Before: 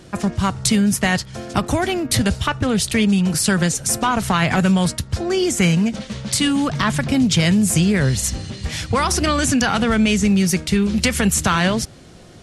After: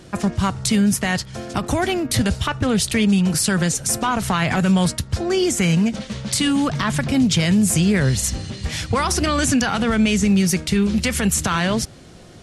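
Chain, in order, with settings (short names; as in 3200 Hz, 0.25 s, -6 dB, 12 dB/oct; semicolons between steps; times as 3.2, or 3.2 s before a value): limiter -9 dBFS, peak gain reduction 5.5 dB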